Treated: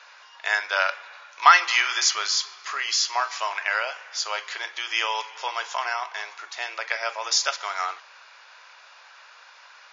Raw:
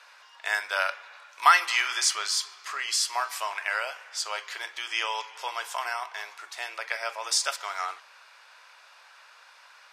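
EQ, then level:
linear-phase brick-wall band-pass 240–7,200 Hz
+4.0 dB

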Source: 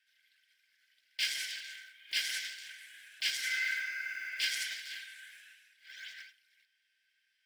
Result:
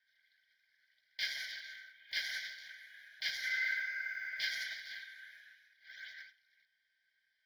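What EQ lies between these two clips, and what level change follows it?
high-shelf EQ 3,700 Hz −10 dB
phaser with its sweep stopped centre 1,800 Hz, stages 8
+2.5 dB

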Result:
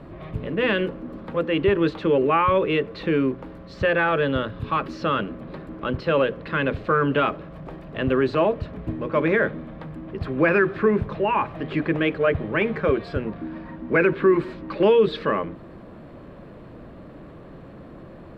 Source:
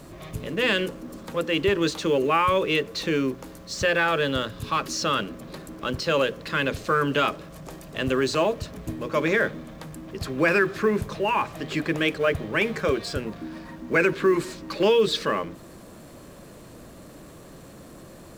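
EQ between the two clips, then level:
high-frequency loss of the air 460 metres
+4.0 dB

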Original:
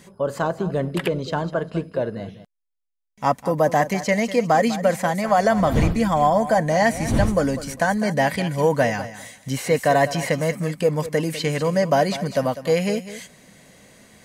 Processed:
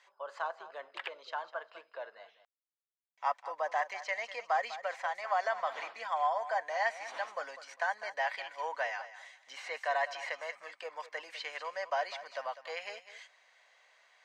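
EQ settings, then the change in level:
high-pass filter 780 Hz 24 dB per octave
high-frequency loss of the air 170 metres
−8.0 dB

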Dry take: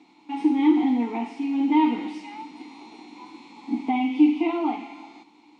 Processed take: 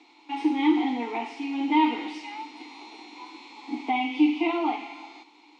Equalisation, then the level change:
high-pass filter 310 Hz 24 dB per octave
high-frequency loss of the air 86 metres
high-shelf EQ 2,100 Hz +9.5 dB
0.0 dB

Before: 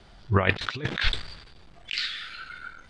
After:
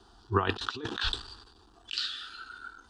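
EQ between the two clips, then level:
high-pass filter 81 Hz 6 dB per octave
dynamic equaliser 2,900 Hz, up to +4 dB, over −42 dBFS, Q 2
phaser with its sweep stopped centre 580 Hz, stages 6
0.0 dB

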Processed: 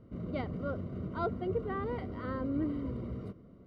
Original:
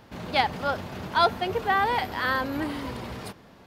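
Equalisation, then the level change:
moving average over 52 samples
0.0 dB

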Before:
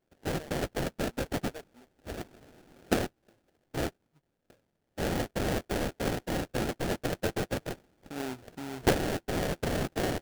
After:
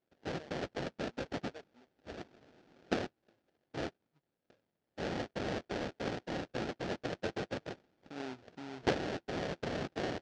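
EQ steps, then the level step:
high-pass filter 140 Hz 6 dB per octave
low-pass filter 5,600 Hz 24 dB per octave
−5.5 dB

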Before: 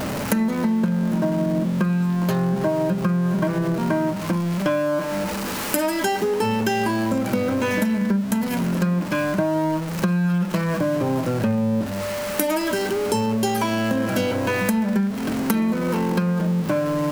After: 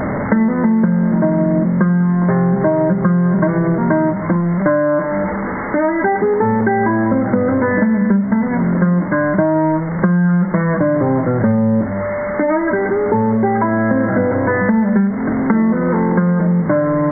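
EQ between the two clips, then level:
linear-phase brick-wall low-pass 2,200 Hz
+7.0 dB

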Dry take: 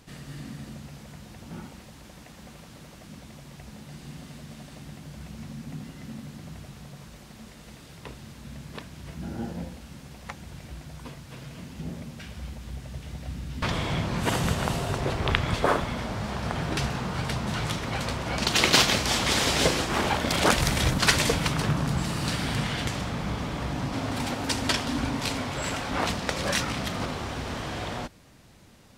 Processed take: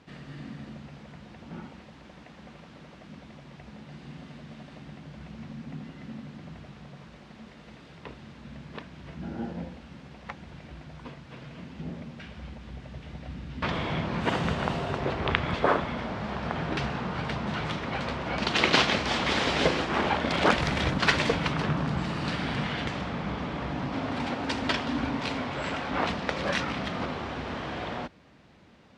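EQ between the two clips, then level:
high-pass filter 72 Hz
low-pass filter 3,300 Hz 12 dB per octave
parametric band 110 Hz −7 dB 0.53 octaves
0.0 dB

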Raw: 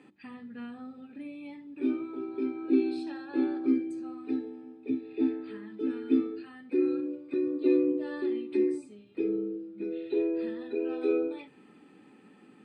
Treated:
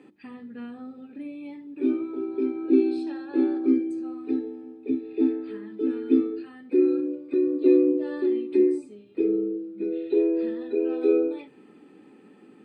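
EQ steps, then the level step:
parametric band 390 Hz +7 dB 1.3 octaves
0.0 dB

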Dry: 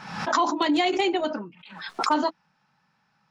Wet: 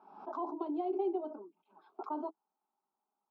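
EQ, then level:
four-pole ladder band-pass 470 Hz, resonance 65%
phaser with its sweep stopped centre 500 Hz, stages 6
0.0 dB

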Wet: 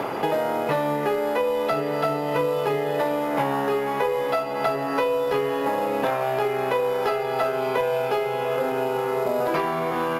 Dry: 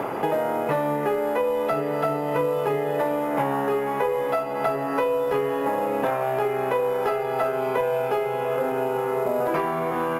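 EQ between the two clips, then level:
parametric band 4,300 Hz +9.5 dB 1.2 octaves
0.0 dB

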